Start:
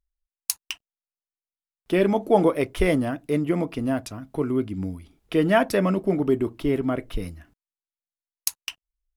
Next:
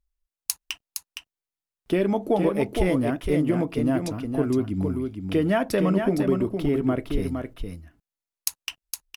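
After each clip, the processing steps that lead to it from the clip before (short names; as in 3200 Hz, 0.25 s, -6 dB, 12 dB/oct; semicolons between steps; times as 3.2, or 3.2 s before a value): low shelf 490 Hz +4 dB; compressor 4:1, threshold -19 dBFS, peak gain reduction 8.5 dB; on a send: echo 0.463 s -6 dB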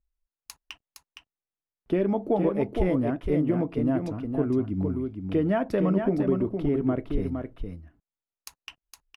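LPF 1200 Hz 6 dB/oct; gain -1.5 dB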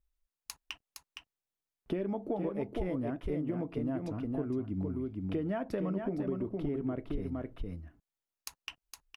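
compressor 3:1, threshold -34 dBFS, peak gain reduction 11.5 dB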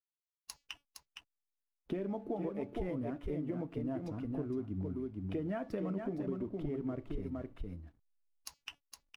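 bin magnitudes rounded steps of 15 dB; de-hum 286.7 Hz, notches 26; backlash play -59.5 dBFS; gain -3 dB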